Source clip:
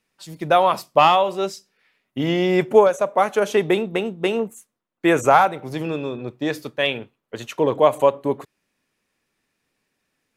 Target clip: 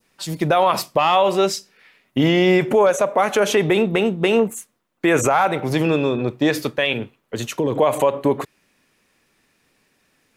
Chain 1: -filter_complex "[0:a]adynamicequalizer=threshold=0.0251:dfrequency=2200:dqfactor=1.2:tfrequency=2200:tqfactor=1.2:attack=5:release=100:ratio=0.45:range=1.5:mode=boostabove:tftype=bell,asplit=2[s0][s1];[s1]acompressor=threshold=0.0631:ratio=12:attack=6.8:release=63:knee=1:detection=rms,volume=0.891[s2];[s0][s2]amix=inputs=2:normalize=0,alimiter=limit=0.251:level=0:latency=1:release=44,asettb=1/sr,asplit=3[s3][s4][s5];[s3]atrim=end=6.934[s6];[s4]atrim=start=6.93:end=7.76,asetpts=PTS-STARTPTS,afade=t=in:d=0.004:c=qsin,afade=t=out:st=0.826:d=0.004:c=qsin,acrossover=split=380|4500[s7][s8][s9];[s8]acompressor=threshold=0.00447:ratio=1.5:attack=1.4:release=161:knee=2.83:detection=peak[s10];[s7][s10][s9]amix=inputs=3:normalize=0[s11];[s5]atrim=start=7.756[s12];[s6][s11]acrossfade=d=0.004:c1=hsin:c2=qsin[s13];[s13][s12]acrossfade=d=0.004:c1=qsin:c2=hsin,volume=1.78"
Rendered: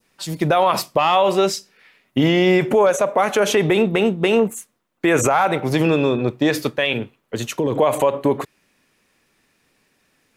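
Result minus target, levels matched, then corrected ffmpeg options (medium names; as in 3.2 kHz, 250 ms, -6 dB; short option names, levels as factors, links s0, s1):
compression: peak gain reduction -6 dB
-filter_complex "[0:a]adynamicequalizer=threshold=0.0251:dfrequency=2200:dqfactor=1.2:tfrequency=2200:tqfactor=1.2:attack=5:release=100:ratio=0.45:range=1.5:mode=boostabove:tftype=bell,asplit=2[s0][s1];[s1]acompressor=threshold=0.0299:ratio=12:attack=6.8:release=63:knee=1:detection=rms,volume=0.891[s2];[s0][s2]amix=inputs=2:normalize=0,alimiter=limit=0.251:level=0:latency=1:release=44,asettb=1/sr,asplit=3[s3][s4][s5];[s3]atrim=end=6.934[s6];[s4]atrim=start=6.93:end=7.76,asetpts=PTS-STARTPTS,afade=t=in:d=0.004:c=qsin,afade=t=out:st=0.826:d=0.004:c=qsin,acrossover=split=380|4500[s7][s8][s9];[s8]acompressor=threshold=0.00447:ratio=1.5:attack=1.4:release=161:knee=2.83:detection=peak[s10];[s7][s10][s9]amix=inputs=3:normalize=0[s11];[s5]atrim=start=7.756[s12];[s6][s11]acrossfade=d=0.004:c1=hsin:c2=qsin[s13];[s13][s12]acrossfade=d=0.004:c1=qsin:c2=hsin,volume=1.78"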